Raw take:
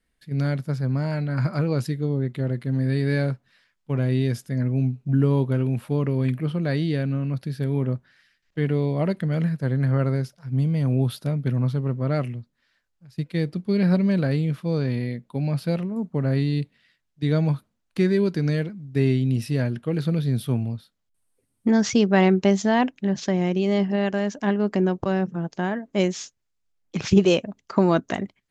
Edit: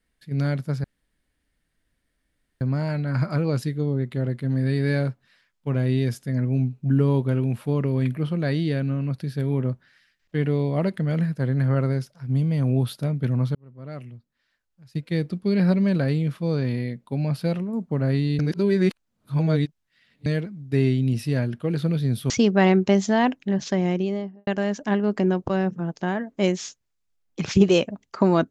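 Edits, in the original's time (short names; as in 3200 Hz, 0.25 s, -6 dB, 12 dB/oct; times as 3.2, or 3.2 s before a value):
0.84 insert room tone 1.77 s
11.78–13.32 fade in
16.62–18.49 reverse
20.53–21.86 cut
23.42–24.03 studio fade out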